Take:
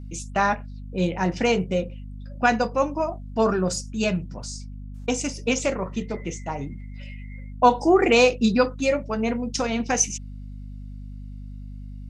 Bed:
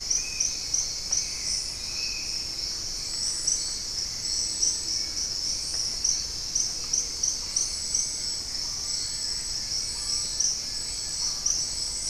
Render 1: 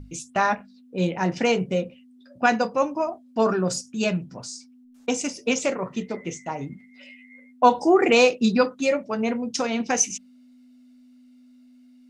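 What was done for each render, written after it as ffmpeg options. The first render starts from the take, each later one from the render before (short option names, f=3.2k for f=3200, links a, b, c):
-af "bandreject=f=50:t=h:w=6,bandreject=f=100:t=h:w=6,bandreject=f=150:t=h:w=6,bandreject=f=200:t=h:w=6"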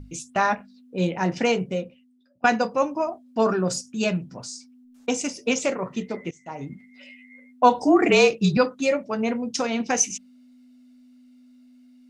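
-filter_complex "[0:a]asettb=1/sr,asplit=3[a][b][c];[a]atrim=end=7.824[d];[b]atrim=start=7.82:end=8.57,asetpts=PTS-STARTPTS,afade=t=in:d=0.004:c=qsin,afade=t=out:st=0.746:d=0.004:c=qsin,afreqshift=-35[e];[c]atrim=start=8.566[f];[d][e]acrossfade=d=0.004:c1=hsin:c2=qsin[g];[g][f]acrossfade=d=0.004:c1=qsin:c2=hsin,asplit=3[h][i][j];[h]atrim=end=2.44,asetpts=PTS-STARTPTS,afade=t=out:st=1.44:d=1:silence=0.0749894[k];[i]atrim=start=2.44:end=6.31,asetpts=PTS-STARTPTS,afade=t=in:d=0.004:c=hsin:silence=0.0749894,afade=t=out:st=3.866:d=0.004:c=hsin:silence=0.0668344[l];[j]atrim=start=6.31,asetpts=PTS-STARTPTS,afade=t=in:d=0.4:silence=0.0668344[m];[k][l][m]concat=n=3:v=0:a=1"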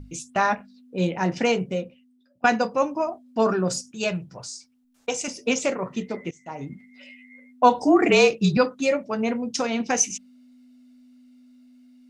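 -filter_complex "[0:a]asettb=1/sr,asplit=3[a][b][c];[a]atrim=end=3.914[d];[b]atrim=start=3.91:end=5.28,asetpts=PTS-STARTPTS,afade=t=in:d=0.004:c=qsin,afade=t=out:st=1.366:d=0.004:c=qsin,equalizer=f=250:w=2.8:g=-13[e];[c]atrim=start=5.276[f];[d][e]acrossfade=d=0.004:c1=hsin:c2=qsin[g];[g][f]acrossfade=d=0.004:c1=qsin:c2=hsin"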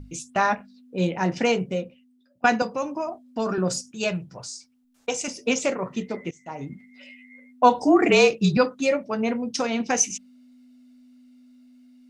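-filter_complex "[0:a]asettb=1/sr,asplit=3[a][b][c];[a]atrim=end=2.624[d];[b]atrim=start=2.62:end=3.58,asetpts=PTS-STARTPTS,afade=t=in:d=0.004:c=qsin,afade=t=out:st=0.956:d=0.004:c=qsin,acrossover=split=180|3000[e][f][g];[f]acompressor=threshold=-25dB:ratio=2.5:attack=3.2:release=140:knee=2.83:detection=peak[h];[e][h][g]amix=inputs=3:normalize=0[i];[c]atrim=start=3.576[j];[d][i]acrossfade=d=0.004:c1=hsin:c2=qsin[k];[k][j]acrossfade=d=0.004:c1=qsin:c2=hsin,asettb=1/sr,asplit=3[l][m][n];[l]atrim=end=8.874[o];[m]atrim=start=8.87:end=9.6,asetpts=PTS-STARTPTS,afade=t=in:d=0.004:c=qsin,afade=t=out:st=0.726:d=0.004:c=qsin,bandreject=f=7.1k:w=6.4[p];[n]atrim=start=9.596[q];[o][p]acrossfade=d=0.004:c1=hsin:c2=qsin[r];[r][q]acrossfade=d=0.004:c1=qsin:c2=hsin"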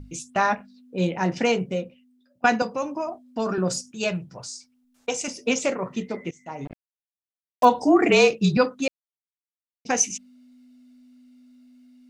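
-filter_complex "[0:a]asettb=1/sr,asplit=3[a][b][c];[a]atrim=end=6.654[d];[b]atrim=start=6.65:end=7.65,asetpts=PTS-STARTPTS,afade=t=in:d=0.004:c=qsin,afade=t=out:st=0.996:d=0.004:c=qsin,acrusher=bits=4:mix=0:aa=0.5[e];[c]atrim=start=7.646[f];[d][e]acrossfade=d=0.004:c1=hsin:c2=qsin[g];[g][f]acrossfade=d=0.004:c1=qsin:c2=hsin,asplit=3[h][i][j];[h]atrim=end=8.88,asetpts=PTS-STARTPTS,afade=t=out:st=8.876:d=0.004:c=hsin[k];[i]atrim=start=8.88:end=9.85,asetpts=PTS-STARTPTS,volume=0[l];[j]atrim=start=9.85,asetpts=PTS-STARTPTS,afade=t=in:d=0.004:c=hsin[m];[k][l][m]concat=n=3:v=0:a=1"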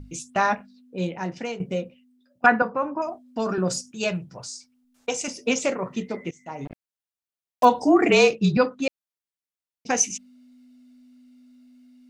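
-filter_complex "[0:a]asettb=1/sr,asplit=3[a][b][c];[a]atrim=end=2.464[d];[b]atrim=start=2.46:end=3.02,asetpts=PTS-STARTPTS,afade=t=in:d=0.004:c=qsin,afade=t=out:st=0.556:d=0.004:c=qsin,lowpass=f=1.5k:t=q:w=2.7[e];[c]atrim=start=3.016[f];[d][e]acrossfade=d=0.004:c1=hsin:c2=qsin[g];[g][f]acrossfade=d=0.004:c1=qsin:c2=hsin,asettb=1/sr,asplit=3[h][i][j];[h]atrim=end=8.364[k];[i]atrim=start=8.36:end=8.87,asetpts=PTS-STARTPTS,afade=t=in:d=0.004:c=qsin,afade=t=out:st=0.506:d=0.004:c=qsin,lowpass=f=4k:p=1[l];[j]atrim=start=8.866[m];[k][l]acrossfade=d=0.004:c1=hsin:c2=qsin[n];[n][m]acrossfade=d=0.004:c1=qsin:c2=hsin,asplit=2[o][p];[o]atrim=end=1.6,asetpts=PTS-STARTPTS,afade=t=out:st=0.56:d=1.04:silence=0.237137[q];[p]atrim=start=1.6,asetpts=PTS-STARTPTS,afade=t=in:d=0.004:c=hsin:silence=0.237137[r];[q][r]concat=n=2:v=0:a=1"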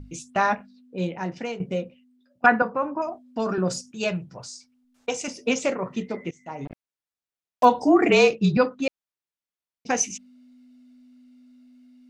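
-af "highshelf=f=7k:g=-7.5"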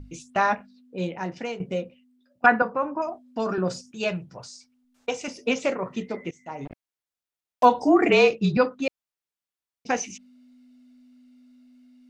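-filter_complex "[0:a]acrossover=split=4900[a][b];[b]acompressor=threshold=-46dB:ratio=4:attack=1:release=60[c];[a][c]amix=inputs=2:normalize=0,equalizer=f=160:t=o:w=1.6:g=-2.5"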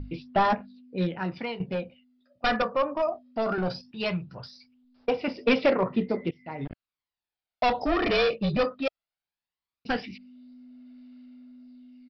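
-af "aresample=11025,asoftclip=type=hard:threshold=-21dB,aresample=44100,aphaser=in_gain=1:out_gain=1:delay=1.7:decay=0.46:speed=0.18:type=sinusoidal"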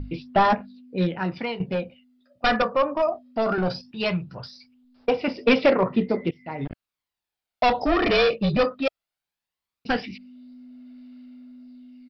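-af "volume=4dB"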